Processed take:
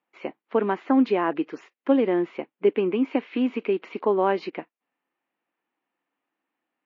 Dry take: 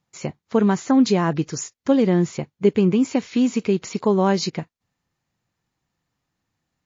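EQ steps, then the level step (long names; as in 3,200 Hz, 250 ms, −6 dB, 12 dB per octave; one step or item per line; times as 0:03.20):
elliptic band-pass filter 280–2,800 Hz, stop band 60 dB
−1.0 dB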